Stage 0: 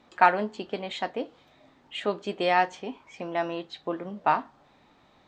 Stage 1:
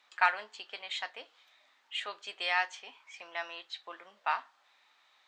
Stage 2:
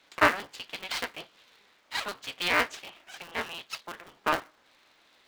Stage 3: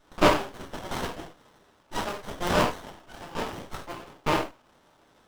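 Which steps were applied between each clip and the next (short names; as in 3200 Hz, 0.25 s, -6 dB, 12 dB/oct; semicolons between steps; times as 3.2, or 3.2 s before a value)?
HPF 1500 Hz 12 dB/oct
cycle switcher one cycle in 3, inverted; gain +4.5 dB
non-linear reverb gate 0.13 s falling, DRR -3.5 dB; running maximum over 17 samples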